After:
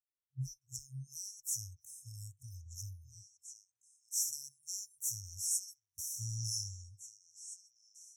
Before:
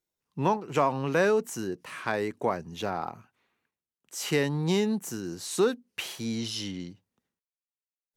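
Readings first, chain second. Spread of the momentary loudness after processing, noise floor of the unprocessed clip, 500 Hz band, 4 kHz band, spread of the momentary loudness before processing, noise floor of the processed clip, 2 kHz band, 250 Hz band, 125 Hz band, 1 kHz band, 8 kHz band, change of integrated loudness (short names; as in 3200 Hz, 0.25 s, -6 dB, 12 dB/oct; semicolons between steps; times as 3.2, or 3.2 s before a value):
18 LU, under -85 dBFS, under -40 dB, -9.5 dB, 11 LU, under -85 dBFS, under -40 dB, under -25 dB, -9.0 dB, under -40 dB, +3.5 dB, -10.5 dB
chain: FFT band-reject 130–5300 Hz; spectral noise reduction 21 dB; delay with a stepping band-pass 0.656 s, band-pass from 890 Hz, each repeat 1.4 oct, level -7 dB; gain +3.5 dB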